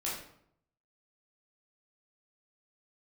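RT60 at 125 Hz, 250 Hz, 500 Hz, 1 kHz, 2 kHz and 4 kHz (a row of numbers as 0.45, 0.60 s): 0.90, 0.75, 0.70, 0.65, 0.55, 0.45 s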